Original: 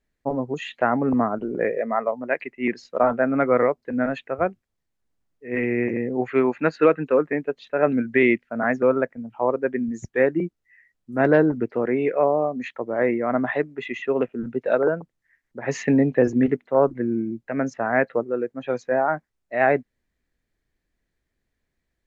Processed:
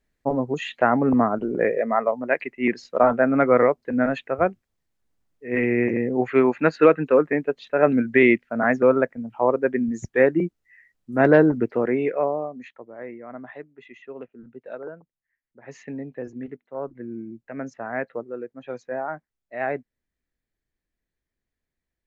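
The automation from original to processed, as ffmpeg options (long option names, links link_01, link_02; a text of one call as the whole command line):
ffmpeg -i in.wav -af "volume=9.5dB,afade=type=out:start_time=11.7:duration=0.79:silence=0.316228,afade=type=out:start_time=12.49:duration=0.44:silence=0.421697,afade=type=in:start_time=16.66:duration=0.74:silence=0.421697" out.wav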